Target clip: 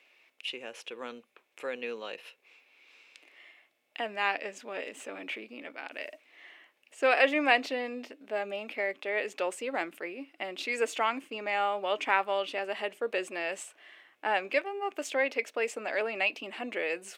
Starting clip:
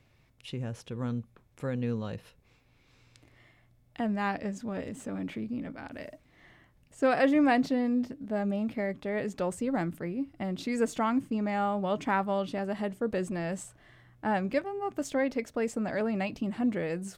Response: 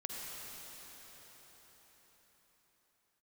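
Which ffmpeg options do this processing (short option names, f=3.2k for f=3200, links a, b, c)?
-af "highpass=f=370:w=0.5412,highpass=f=370:w=1.3066,equalizer=f=2.6k:w=1.7:g=13"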